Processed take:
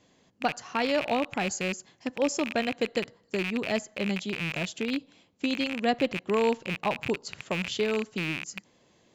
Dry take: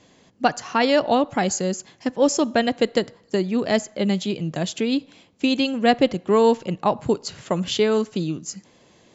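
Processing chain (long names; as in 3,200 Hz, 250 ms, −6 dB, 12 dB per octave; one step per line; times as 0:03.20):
loose part that buzzes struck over −39 dBFS, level −12 dBFS
level −8.5 dB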